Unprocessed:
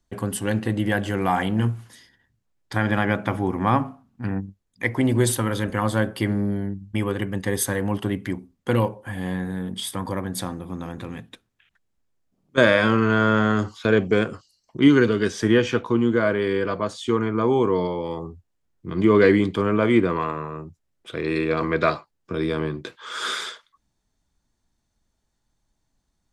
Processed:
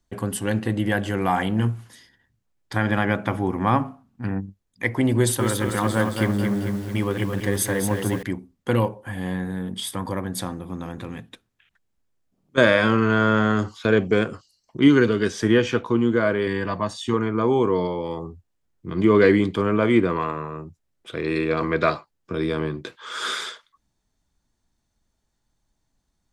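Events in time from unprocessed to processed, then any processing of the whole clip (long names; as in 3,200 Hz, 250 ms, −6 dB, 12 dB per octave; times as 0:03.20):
0:05.17–0:08.23: feedback echo at a low word length 222 ms, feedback 55%, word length 7 bits, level −5 dB
0:16.47–0:17.14: comb filter 1.1 ms, depth 56%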